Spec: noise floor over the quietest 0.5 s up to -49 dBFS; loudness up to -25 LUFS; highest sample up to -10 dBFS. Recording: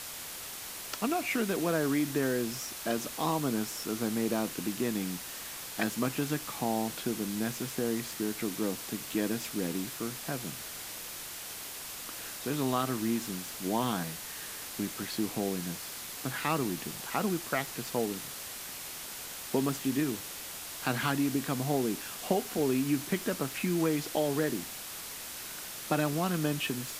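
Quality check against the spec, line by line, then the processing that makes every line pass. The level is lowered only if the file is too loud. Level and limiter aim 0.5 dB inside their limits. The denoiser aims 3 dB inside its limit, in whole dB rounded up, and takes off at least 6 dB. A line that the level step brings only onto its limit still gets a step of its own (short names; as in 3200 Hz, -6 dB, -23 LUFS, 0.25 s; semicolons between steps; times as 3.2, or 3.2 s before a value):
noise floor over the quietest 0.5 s -42 dBFS: fail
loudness -33.0 LUFS: OK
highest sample -14.0 dBFS: OK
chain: denoiser 10 dB, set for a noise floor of -42 dBFS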